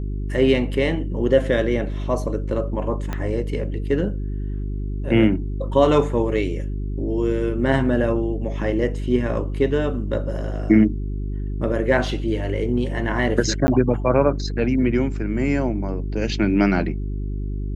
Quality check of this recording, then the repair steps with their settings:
mains hum 50 Hz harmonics 8 −26 dBFS
0:03.13: click −13 dBFS
0:13.67–0:13.68: drop-out 10 ms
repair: click removal
hum removal 50 Hz, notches 8
repair the gap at 0:13.67, 10 ms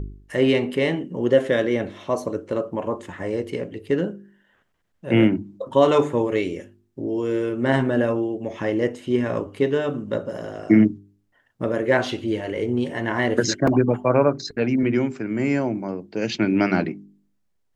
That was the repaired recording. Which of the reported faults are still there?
0:03.13: click

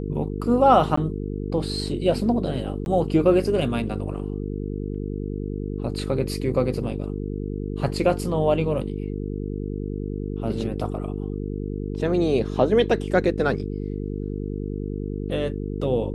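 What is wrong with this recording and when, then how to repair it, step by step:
mains buzz 50 Hz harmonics 9 −29 dBFS
0:00.96–0:00.97: drop-out 14 ms
0:02.85–0:02.86: drop-out 11 ms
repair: hum removal 50 Hz, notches 9
repair the gap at 0:00.96, 14 ms
repair the gap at 0:02.85, 11 ms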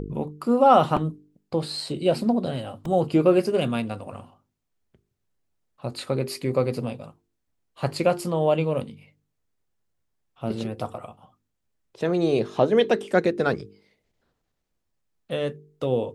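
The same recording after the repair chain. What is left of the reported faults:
none of them is left

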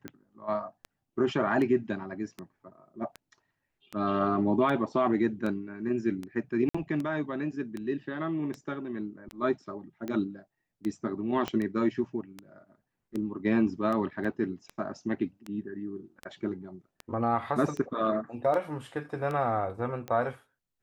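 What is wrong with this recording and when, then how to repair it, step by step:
scratch tick 78 rpm −23 dBFS
0:06.69–0:06.75: drop-out 55 ms
0:11.48: click −17 dBFS
0:14.24–0:14.25: drop-out 5.6 ms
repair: click removal
repair the gap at 0:06.69, 55 ms
repair the gap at 0:14.24, 5.6 ms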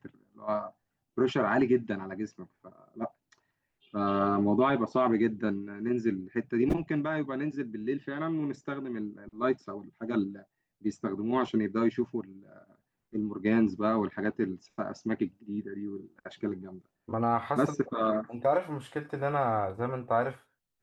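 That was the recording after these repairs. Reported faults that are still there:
0:11.48: click

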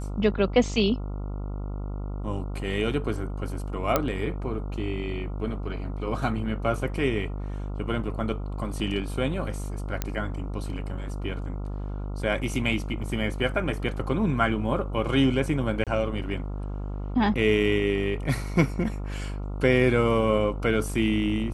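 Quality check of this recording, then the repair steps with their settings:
mains buzz 50 Hz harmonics 28 −32 dBFS
0:03.96: click −7 dBFS
0:10.02: click −11 dBFS
0:15.84–0:15.87: drop-out 27 ms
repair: click removal
hum removal 50 Hz, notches 28
repair the gap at 0:15.84, 27 ms

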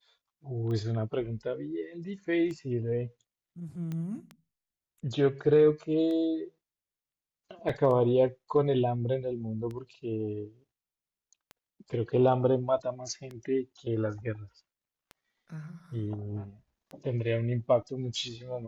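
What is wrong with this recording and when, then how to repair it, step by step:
scratch tick 33 1/3 rpm −28 dBFS
0:03.92: click −25 dBFS
0:07.69: drop-out 4.1 ms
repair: click removal
repair the gap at 0:07.69, 4.1 ms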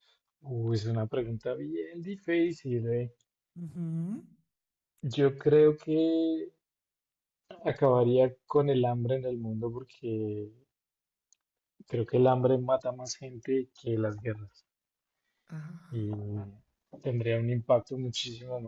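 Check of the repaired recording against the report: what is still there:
none of them is left

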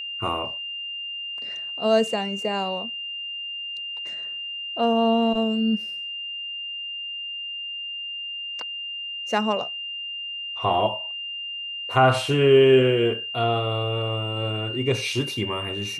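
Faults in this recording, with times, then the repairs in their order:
whistle 2,800 Hz −30 dBFS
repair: notch filter 2,800 Hz, Q 30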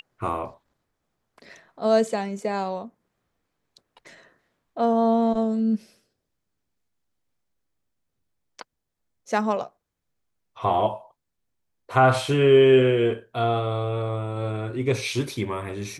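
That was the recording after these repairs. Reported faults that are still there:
none of them is left

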